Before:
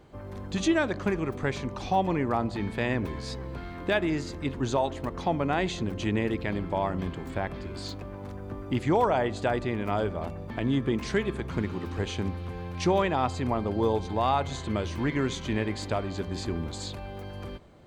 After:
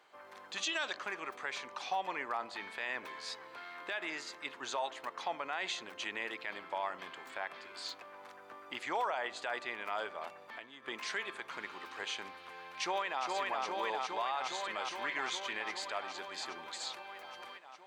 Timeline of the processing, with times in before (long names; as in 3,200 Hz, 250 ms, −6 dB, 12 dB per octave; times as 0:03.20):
0:00.65–0:00.96: gain on a spectral selection 2,500–8,100 Hz +9 dB
0:10.39–0:10.88: downward compressor 8 to 1, threshold −33 dBFS
0:12.52–0:13.24: delay throw 410 ms, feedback 80%, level −3 dB
whole clip: high-pass filter 1,100 Hz 12 dB per octave; high-shelf EQ 5,000 Hz −6.5 dB; brickwall limiter −26.5 dBFS; level +1 dB